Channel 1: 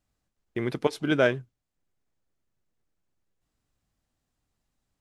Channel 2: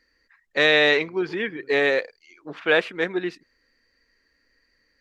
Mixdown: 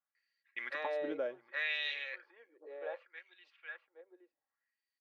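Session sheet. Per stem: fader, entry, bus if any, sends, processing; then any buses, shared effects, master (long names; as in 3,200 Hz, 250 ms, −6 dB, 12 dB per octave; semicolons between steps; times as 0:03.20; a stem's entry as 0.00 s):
−2.5 dB, 0.00 s, no send, echo send −21.5 dB, downward compressor 5 to 1, threshold −25 dBFS, peak gain reduction 8.5 dB; low-pass that shuts in the quiet parts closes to 1,100 Hz, open at −27 dBFS; tilt shelving filter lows −7.5 dB, about 900 Hz
0:01.17 −6 dB → 0:01.40 −13.5 dB → 0:02.55 −13.5 dB → 0:03.05 −20 dB, 0.15 s, no send, echo send −7 dB, high-pass filter 400 Hz 24 dB per octave; automatic ducking −15 dB, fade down 1.90 s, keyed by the first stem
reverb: not used
echo: single-tap delay 817 ms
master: comb filter 3.6 ms, depth 47%; auto-filter band-pass sine 0.66 Hz 450–3,300 Hz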